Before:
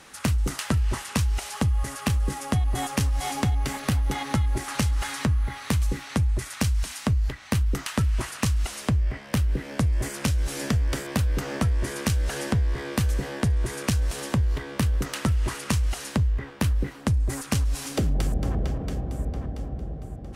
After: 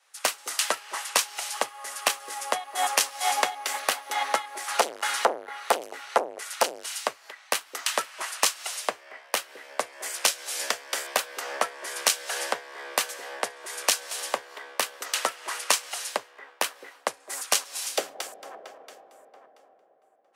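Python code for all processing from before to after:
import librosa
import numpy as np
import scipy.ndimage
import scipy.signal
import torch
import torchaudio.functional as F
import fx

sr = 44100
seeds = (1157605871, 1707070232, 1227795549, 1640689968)

y = fx.chain(x, sr, fx.small_body(hz=(230.0, 440.0, 1400.0, 2900.0), ring_ms=45, db=8),
    fx.transformer_sat(knee_hz=710.0), at=(4.75, 7.03))
y = scipy.signal.sosfilt(scipy.signal.butter(4, 560.0, 'highpass', fs=sr, output='sos'), y)
y = fx.band_widen(y, sr, depth_pct=100)
y = y * librosa.db_to_amplitude(5.0)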